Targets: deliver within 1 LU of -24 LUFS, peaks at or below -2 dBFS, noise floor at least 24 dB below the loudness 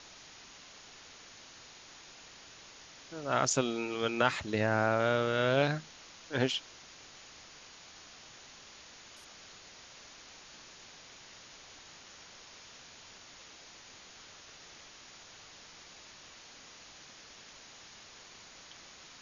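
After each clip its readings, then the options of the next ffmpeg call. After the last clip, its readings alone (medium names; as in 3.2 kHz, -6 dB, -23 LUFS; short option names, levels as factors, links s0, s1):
noise floor -54 dBFS; noise floor target -55 dBFS; loudness -31.0 LUFS; peak level -10.5 dBFS; loudness target -24.0 LUFS
-> -af "afftdn=nr=6:nf=-54"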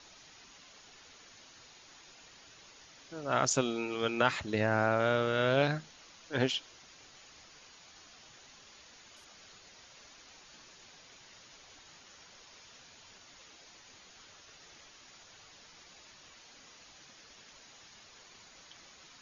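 noise floor -57 dBFS; loudness -30.5 LUFS; peak level -10.5 dBFS; loudness target -24.0 LUFS
-> -af "volume=2.11"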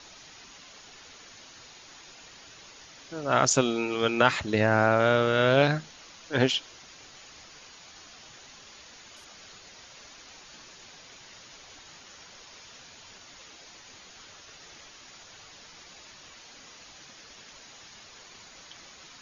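loudness -24.0 LUFS; peak level -4.0 dBFS; noise floor -51 dBFS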